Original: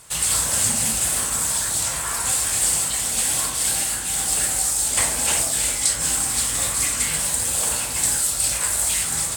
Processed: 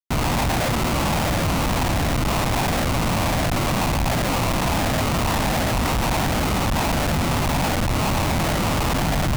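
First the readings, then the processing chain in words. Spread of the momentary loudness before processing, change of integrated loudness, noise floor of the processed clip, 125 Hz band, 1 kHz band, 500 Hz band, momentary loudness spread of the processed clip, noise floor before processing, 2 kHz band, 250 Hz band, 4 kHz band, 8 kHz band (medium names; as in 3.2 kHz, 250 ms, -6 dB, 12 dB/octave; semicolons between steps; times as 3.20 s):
2 LU, -2.5 dB, -22 dBFS, +14.5 dB, +10.0 dB, +11.5 dB, 0 LU, -27 dBFS, +4.0 dB, +15.0 dB, -1.0 dB, -14.5 dB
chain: treble shelf 2.2 kHz -2.5 dB; sample-rate reducer 1.7 kHz, jitter 0%; LFO low-pass saw down 1.4 Hz 610–1700 Hz; Schmitt trigger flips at -25.5 dBFS; peaking EQ 420 Hz -9 dB 0.85 oct; trim +3 dB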